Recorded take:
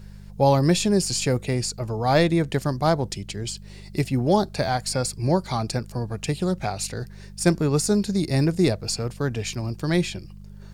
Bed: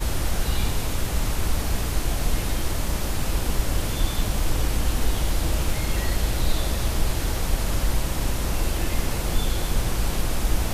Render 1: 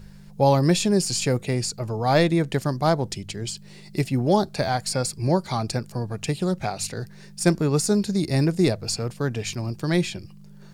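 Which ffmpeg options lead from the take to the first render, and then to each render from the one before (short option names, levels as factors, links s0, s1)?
-af "bandreject=f=50:t=h:w=4,bandreject=f=100:t=h:w=4"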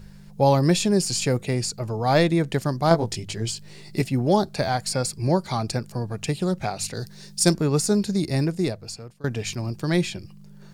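-filter_complex "[0:a]asettb=1/sr,asplit=3[s0][s1][s2];[s0]atrim=end=2.894[s3];[s1]atrim=start=2.89:end=4.02,asetpts=PTS-STARTPTS,afade=t=in:d=0.004:c=qsin,afade=t=out:st=1.126:d=0.004:c=qsin,asplit=2[s4][s5];[s5]adelay=18,volume=0.75[s6];[s4][s6]amix=inputs=2:normalize=0,atrim=end_sample=49833[s7];[s2]atrim=start=4.016[s8];[s3][s7]acrossfade=d=0.004:c1=hsin:c2=qsin[s9];[s9][s8]acrossfade=d=0.004:c1=qsin:c2=hsin,asettb=1/sr,asplit=3[s10][s11][s12];[s10]atrim=end=6.944[s13];[s11]atrim=start=6.94:end=7.54,asetpts=PTS-STARTPTS,afade=t=in:d=0.004:c=qsin,afade=t=out:st=0.596:d=0.004:c=qsin,highshelf=f=3000:t=q:w=1.5:g=6.5[s14];[s12]atrim=start=7.536[s15];[s13][s14]acrossfade=d=0.004:c1=hsin:c2=qsin[s16];[s16][s15]acrossfade=d=0.004:c1=qsin:c2=hsin,asplit=2[s17][s18];[s17]atrim=end=9.24,asetpts=PTS-STARTPTS,afade=t=out:st=8.16:d=1.08:silence=0.0841395[s19];[s18]atrim=start=9.24,asetpts=PTS-STARTPTS,afade=t=in:d=0.004:c=hsin:silence=0.0841395[s20];[s19][s20]concat=n=2:v=0:a=1"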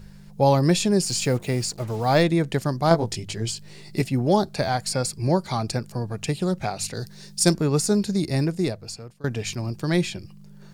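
-filter_complex "[0:a]asettb=1/sr,asplit=3[s0][s1][s2];[s0]atrim=end=1.084[s3];[s1]atrim=start=1.08:end=2.23,asetpts=PTS-STARTPTS,afade=t=in:d=0.004:c=qsin,afade=t=out:st=1.146:d=0.004:c=qsin,acrusher=bits=6:mix=0:aa=0.5[s4];[s2]atrim=start=2.226[s5];[s3][s4]acrossfade=d=0.004:c1=hsin:c2=qsin[s6];[s6][s5]acrossfade=d=0.004:c1=qsin:c2=hsin"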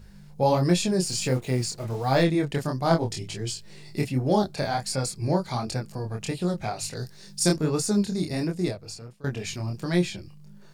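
-af "flanger=delay=22.5:depth=5.4:speed=1.4"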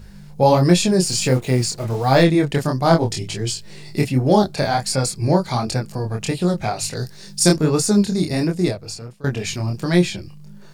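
-af "volume=2.37,alimiter=limit=0.891:level=0:latency=1"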